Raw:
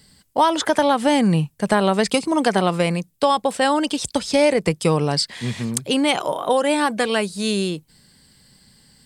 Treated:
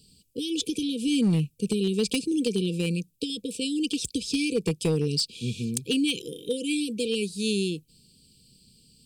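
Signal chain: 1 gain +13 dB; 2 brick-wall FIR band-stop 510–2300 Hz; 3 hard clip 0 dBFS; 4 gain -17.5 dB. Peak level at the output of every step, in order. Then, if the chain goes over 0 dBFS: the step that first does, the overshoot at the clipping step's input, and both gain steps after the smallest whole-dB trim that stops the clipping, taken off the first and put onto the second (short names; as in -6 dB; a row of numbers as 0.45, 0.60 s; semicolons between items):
+8.0, +8.0, 0.0, -17.5 dBFS; step 1, 8.0 dB; step 1 +5 dB, step 4 -9.5 dB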